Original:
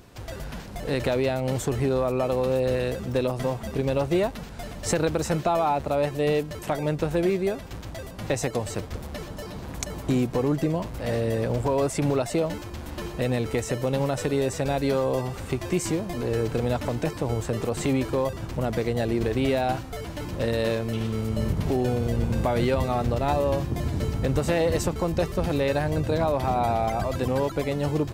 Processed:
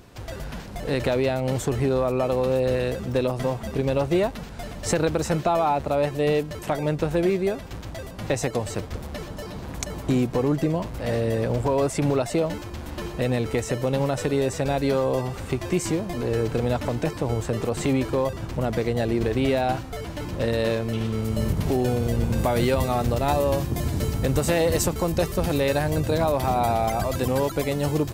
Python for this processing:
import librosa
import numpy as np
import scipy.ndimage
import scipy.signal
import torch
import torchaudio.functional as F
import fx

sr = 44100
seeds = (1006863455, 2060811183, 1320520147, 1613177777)

y = fx.high_shelf(x, sr, hz=7000.0, db=fx.steps((0.0, -2.0), (21.24, 6.5), (22.38, 11.5)))
y = y * librosa.db_to_amplitude(1.5)